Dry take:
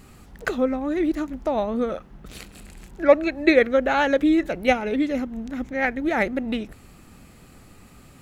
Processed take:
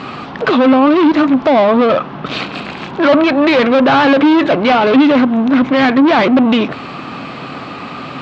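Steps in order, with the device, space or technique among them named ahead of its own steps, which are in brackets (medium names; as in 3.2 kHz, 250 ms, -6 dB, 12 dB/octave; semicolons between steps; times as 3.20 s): overdrive pedal into a guitar cabinet (overdrive pedal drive 36 dB, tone 6.5 kHz, clips at -3.5 dBFS; cabinet simulation 93–4000 Hz, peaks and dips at 140 Hz +8 dB, 270 Hz +6 dB, 660 Hz +3 dB, 1.1 kHz +6 dB, 1.9 kHz -5 dB); trim -1.5 dB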